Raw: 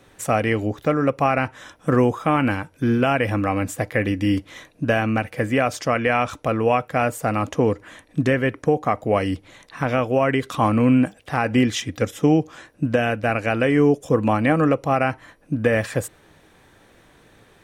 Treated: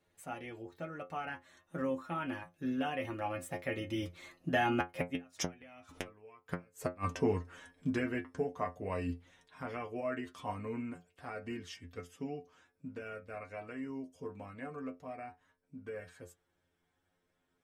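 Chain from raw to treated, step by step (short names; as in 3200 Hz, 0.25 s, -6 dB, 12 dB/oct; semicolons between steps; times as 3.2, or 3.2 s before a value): Doppler pass-by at 5.86, 25 m/s, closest 6.3 m; dynamic EQ 540 Hz, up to -4 dB, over -36 dBFS, Q 1.3; flipped gate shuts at -21 dBFS, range -36 dB; metallic resonator 86 Hz, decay 0.22 s, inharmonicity 0.002; gain +12.5 dB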